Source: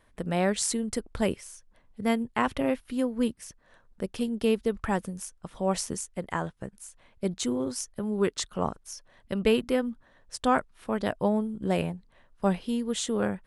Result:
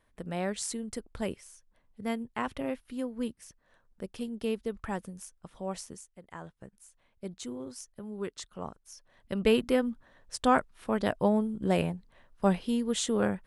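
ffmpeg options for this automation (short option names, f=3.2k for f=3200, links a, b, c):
-af "volume=11dB,afade=t=out:st=5.46:d=0.76:silence=0.281838,afade=t=in:st=6.22:d=0.31:silence=0.421697,afade=t=in:st=8.84:d=0.78:silence=0.298538"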